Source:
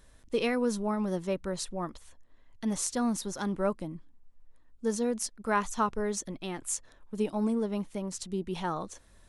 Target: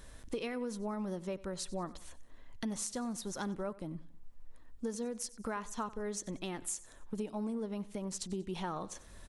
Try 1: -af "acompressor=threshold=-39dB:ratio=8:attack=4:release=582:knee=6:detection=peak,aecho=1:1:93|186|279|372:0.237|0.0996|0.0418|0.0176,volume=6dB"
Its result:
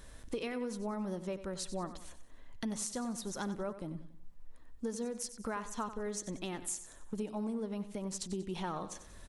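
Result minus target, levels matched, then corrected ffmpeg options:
echo-to-direct +6.5 dB
-af "acompressor=threshold=-39dB:ratio=8:attack=4:release=582:knee=6:detection=peak,aecho=1:1:93|186|279:0.112|0.0471|0.0198,volume=6dB"

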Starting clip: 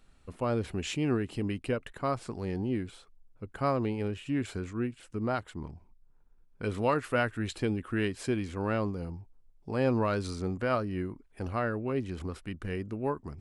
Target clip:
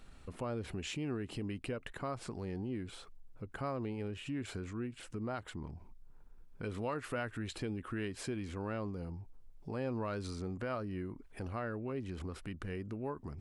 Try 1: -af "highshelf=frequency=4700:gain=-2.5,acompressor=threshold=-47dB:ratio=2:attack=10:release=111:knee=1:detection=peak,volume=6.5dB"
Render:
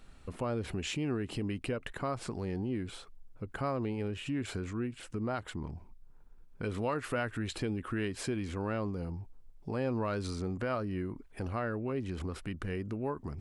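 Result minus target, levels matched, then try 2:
downward compressor: peak gain reduction −4.5 dB
-af "highshelf=frequency=4700:gain=-2.5,acompressor=threshold=-56dB:ratio=2:attack=10:release=111:knee=1:detection=peak,volume=6.5dB"

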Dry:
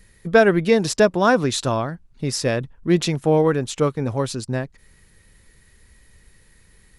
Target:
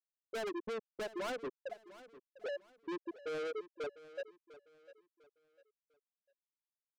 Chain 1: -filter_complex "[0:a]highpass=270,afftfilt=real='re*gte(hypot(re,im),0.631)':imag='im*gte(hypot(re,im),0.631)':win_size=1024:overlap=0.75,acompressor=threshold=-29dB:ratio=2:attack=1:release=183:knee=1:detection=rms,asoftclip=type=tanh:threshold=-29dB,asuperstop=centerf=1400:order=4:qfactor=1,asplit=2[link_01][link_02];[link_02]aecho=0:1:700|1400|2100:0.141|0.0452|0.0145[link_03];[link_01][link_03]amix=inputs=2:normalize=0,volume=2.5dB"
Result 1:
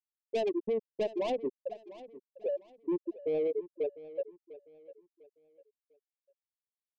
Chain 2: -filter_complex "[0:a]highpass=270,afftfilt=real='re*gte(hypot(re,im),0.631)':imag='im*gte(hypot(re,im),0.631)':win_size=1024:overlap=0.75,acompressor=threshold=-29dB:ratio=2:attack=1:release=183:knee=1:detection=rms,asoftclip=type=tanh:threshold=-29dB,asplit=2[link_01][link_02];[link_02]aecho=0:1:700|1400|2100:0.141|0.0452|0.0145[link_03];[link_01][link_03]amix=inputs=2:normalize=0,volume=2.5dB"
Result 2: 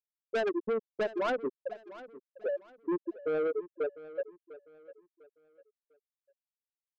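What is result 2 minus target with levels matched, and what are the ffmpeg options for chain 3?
soft clipping: distortion −5 dB
-filter_complex "[0:a]highpass=270,afftfilt=real='re*gte(hypot(re,im),0.631)':imag='im*gte(hypot(re,im),0.631)':win_size=1024:overlap=0.75,acompressor=threshold=-29dB:ratio=2:attack=1:release=183:knee=1:detection=rms,asoftclip=type=tanh:threshold=-40dB,asplit=2[link_01][link_02];[link_02]aecho=0:1:700|1400|2100:0.141|0.0452|0.0145[link_03];[link_01][link_03]amix=inputs=2:normalize=0,volume=2.5dB"

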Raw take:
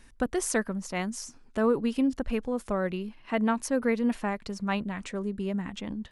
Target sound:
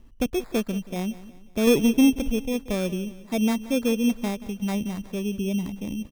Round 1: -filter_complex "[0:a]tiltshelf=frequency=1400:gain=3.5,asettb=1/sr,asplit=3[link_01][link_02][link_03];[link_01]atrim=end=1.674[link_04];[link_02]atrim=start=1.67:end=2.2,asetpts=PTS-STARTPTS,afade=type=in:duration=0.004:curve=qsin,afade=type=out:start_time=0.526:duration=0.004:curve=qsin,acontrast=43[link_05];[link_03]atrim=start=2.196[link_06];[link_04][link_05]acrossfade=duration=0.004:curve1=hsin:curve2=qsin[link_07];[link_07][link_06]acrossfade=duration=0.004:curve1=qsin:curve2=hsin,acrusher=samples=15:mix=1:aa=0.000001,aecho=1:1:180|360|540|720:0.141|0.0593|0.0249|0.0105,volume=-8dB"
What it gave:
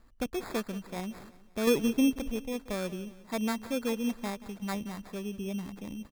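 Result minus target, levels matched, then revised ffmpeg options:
1,000 Hz band +5.0 dB
-filter_complex "[0:a]tiltshelf=frequency=1400:gain=13.5,asettb=1/sr,asplit=3[link_01][link_02][link_03];[link_01]atrim=end=1.674[link_04];[link_02]atrim=start=1.67:end=2.2,asetpts=PTS-STARTPTS,afade=type=in:duration=0.004:curve=qsin,afade=type=out:start_time=0.526:duration=0.004:curve=qsin,acontrast=43[link_05];[link_03]atrim=start=2.196[link_06];[link_04][link_05]acrossfade=duration=0.004:curve1=hsin:curve2=qsin[link_07];[link_07][link_06]acrossfade=duration=0.004:curve1=qsin:curve2=hsin,acrusher=samples=15:mix=1:aa=0.000001,aecho=1:1:180|360|540|720:0.141|0.0593|0.0249|0.0105,volume=-8dB"

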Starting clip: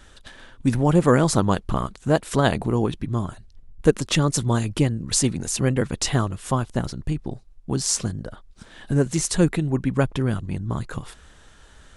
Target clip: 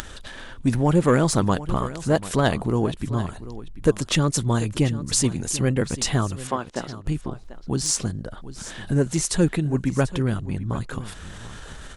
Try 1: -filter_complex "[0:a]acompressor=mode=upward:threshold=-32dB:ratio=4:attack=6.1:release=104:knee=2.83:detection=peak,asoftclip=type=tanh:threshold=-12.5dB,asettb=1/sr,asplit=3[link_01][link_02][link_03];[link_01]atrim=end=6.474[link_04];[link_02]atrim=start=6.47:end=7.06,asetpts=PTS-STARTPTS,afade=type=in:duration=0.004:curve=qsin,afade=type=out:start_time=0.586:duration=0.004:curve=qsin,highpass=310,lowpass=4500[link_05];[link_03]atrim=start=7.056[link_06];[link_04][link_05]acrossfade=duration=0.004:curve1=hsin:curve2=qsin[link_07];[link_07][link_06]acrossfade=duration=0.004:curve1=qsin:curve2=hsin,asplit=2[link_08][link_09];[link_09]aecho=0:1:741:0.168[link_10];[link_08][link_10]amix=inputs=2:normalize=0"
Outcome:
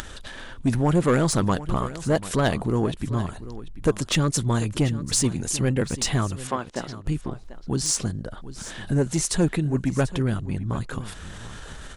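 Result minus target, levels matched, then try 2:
soft clipping: distortion +8 dB
-filter_complex "[0:a]acompressor=mode=upward:threshold=-32dB:ratio=4:attack=6.1:release=104:knee=2.83:detection=peak,asoftclip=type=tanh:threshold=-6.5dB,asettb=1/sr,asplit=3[link_01][link_02][link_03];[link_01]atrim=end=6.474[link_04];[link_02]atrim=start=6.47:end=7.06,asetpts=PTS-STARTPTS,afade=type=in:duration=0.004:curve=qsin,afade=type=out:start_time=0.586:duration=0.004:curve=qsin,highpass=310,lowpass=4500[link_05];[link_03]atrim=start=7.056[link_06];[link_04][link_05]acrossfade=duration=0.004:curve1=hsin:curve2=qsin[link_07];[link_07][link_06]acrossfade=duration=0.004:curve1=qsin:curve2=hsin,asplit=2[link_08][link_09];[link_09]aecho=0:1:741:0.168[link_10];[link_08][link_10]amix=inputs=2:normalize=0"

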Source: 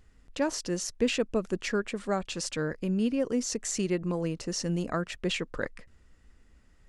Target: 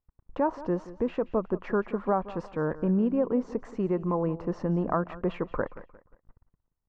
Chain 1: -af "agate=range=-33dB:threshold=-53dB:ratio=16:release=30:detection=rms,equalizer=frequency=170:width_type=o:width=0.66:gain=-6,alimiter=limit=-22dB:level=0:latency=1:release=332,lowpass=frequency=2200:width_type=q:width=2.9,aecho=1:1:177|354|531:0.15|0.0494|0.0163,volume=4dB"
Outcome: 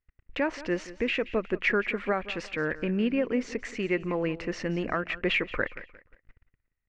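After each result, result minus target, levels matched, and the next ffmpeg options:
2,000 Hz band +13.5 dB; 125 Hz band −4.5 dB
-af "agate=range=-33dB:threshold=-53dB:ratio=16:release=30:detection=rms,equalizer=frequency=170:width_type=o:width=0.66:gain=-6,alimiter=limit=-22dB:level=0:latency=1:release=332,lowpass=frequency=1000:width_type=q:width=2.9,aecho=1:1:177|354|531:0.15|0.0494|0.0163,volume=4dB"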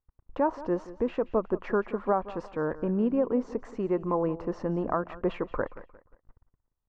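125 Hz band −4.0 dB
-af "agate=range=-33dB:threshold=-53dB:ratio=16:release=30:detection=rms,alimiter=limit=-22dB:level=0:latency=1:release=332,lowpass=frequency=1000:width_type=q:width=2.9,aecho=1:1:177|354|531:0.15|0.0494|0.0163,volume=4dB"

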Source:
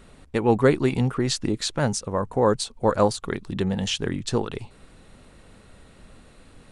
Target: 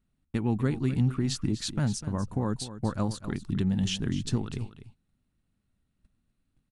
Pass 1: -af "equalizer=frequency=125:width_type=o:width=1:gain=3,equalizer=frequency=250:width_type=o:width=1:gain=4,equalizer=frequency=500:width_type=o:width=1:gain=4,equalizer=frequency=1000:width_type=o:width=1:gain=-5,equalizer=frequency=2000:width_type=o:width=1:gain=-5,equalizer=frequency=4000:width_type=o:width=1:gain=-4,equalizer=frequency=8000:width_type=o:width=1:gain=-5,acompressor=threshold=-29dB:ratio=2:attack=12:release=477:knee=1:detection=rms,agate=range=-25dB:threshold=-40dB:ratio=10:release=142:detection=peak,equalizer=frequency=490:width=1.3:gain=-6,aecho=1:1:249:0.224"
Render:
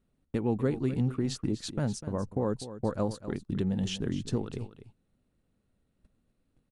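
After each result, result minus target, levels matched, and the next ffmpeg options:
500 Hz band +6.5 dB; downward compressor: peak gain reduction +5 dB
-af "equalizer=frequency=125:width_type=o:width=1:gain=3,equalizer=frequency=250:width_type=o:width=1:gain=4,equalizer=frequency=500:width_type=o:width=1:gain=4,equalizer=frequency=1000:width_type=o:width=1:gain=-5,equalizer=frequency=2000:width_type=o:width=1:gain=-5,equalizer=frequency=4000:width_type=o:width=1:gain=-4,equalizer=frequency=8000:width_type=o:width=1:gain=-5,acompressor=threshold=-29dB:ratio=2:attack=12:release=477:knee=1:detection=rms,agate=range=-25dB:threshold=-40dB:ratio=10:release=142:detection=peak,equalizer=frequency=490:width=1.3:gain=-18,aecho=1:1:249:0.224"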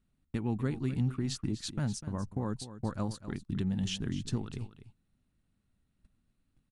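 downward compressor: peak gain reduction +5 dB
-af "equalizer=frequency=125:width_type=o:width=1:gain=3,equalizer=frequency=250:width_type=o:width=1:gain=4,equalizer=frequency=500:width_type=o:width=1:gain=4,equalizer=frequency=1000:width_type=o:width=1:gain=-5,equalizer=frequency=2000:width_type=o:width=1:gain=-5,equalizer=frequency=4000:width_type=o:width=1:gain=-4,equalizer=frequency=8000:width_type=o:width=1:gain=-5,acompressor=threshold=-18.5dB:ratio=2:attack=12:release=477:knee=1:detection=rms,agate=range=-25dB:threshold=-40dB:ratio=10:release=142:detection=peak,equalizer=frequency=490:width=1.3:gain=-18,aecho=1:1:249:0.224"

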